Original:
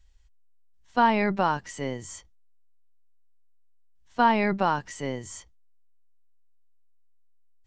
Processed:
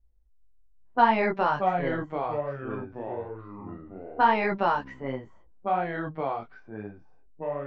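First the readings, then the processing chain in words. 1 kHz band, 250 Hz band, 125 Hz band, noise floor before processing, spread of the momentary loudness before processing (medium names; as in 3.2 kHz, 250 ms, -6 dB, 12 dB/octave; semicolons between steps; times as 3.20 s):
+1.5 dB, -2.5 dB, 0.0 dB, -57 dBFS, 20 LU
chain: tone controls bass -7 dB, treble -9 dB; chorus voices 4, 1 Hz, delay 19 ms, depth 4.5 ms; level-controlled noise filter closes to 410 Hz, open at -24.5 dBFS; ever faster or slower copies 375 ms, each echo -4 st, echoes 3, each echo -6 dB; trim +3.5 dB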